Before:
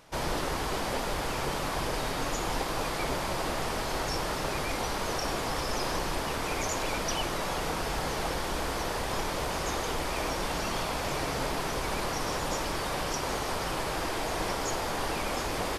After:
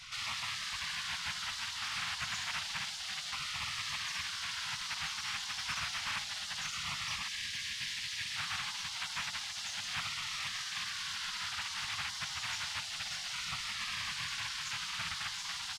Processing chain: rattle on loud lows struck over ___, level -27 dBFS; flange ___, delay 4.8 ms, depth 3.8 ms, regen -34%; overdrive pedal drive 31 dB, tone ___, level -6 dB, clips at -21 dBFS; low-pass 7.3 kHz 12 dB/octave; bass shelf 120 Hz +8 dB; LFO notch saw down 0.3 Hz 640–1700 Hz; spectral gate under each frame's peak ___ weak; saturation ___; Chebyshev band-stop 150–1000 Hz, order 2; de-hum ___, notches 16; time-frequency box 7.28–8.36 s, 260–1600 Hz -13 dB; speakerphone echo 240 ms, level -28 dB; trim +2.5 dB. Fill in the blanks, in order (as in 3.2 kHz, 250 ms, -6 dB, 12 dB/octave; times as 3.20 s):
-39 dBFS, 0.49 Hz, 2 kHz, -15 dB, -30.5 dBFS, 59.14 Hz